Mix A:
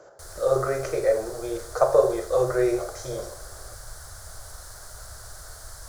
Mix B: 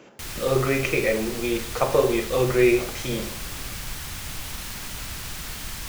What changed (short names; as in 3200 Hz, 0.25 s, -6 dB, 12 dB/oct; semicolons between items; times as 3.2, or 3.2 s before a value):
background +6.0 dB; master: remove EQ curve 100 Hz 0 dB, 240 Hz -22 dB, 340 Hz -7 dB, 630 Hz +7 dB, 900 Hz -3 dB, 1500 Hz +2 dB, 2600 Hz -24 dB, 4400 Hz -3 dB, 10000 Hz +2 dB, 15000 Hz -11 dB